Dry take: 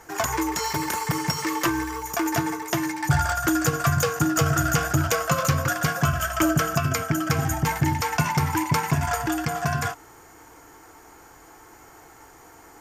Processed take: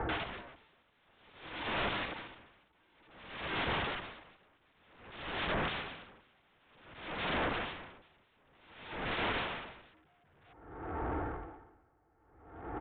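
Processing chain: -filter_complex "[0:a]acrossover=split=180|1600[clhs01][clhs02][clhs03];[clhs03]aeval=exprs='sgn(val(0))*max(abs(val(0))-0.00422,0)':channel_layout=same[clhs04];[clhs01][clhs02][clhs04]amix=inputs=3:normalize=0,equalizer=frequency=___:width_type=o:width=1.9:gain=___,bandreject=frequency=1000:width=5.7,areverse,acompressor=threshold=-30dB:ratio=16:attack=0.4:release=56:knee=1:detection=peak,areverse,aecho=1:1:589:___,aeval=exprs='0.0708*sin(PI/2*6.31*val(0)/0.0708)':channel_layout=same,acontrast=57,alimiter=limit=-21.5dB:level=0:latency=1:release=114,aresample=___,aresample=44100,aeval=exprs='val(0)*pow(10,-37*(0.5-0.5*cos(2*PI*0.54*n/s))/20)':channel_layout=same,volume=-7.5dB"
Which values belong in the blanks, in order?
66, 6.5, 0.668, 8000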